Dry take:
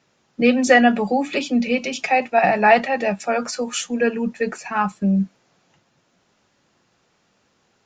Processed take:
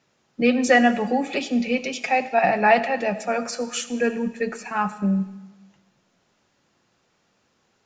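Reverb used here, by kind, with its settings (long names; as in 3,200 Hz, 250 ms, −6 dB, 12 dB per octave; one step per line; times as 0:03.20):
comb and all-pass reverb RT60 1.1 s, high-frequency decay 1×, pre-delay 30 ms, DRR 13 dB
level −3 dB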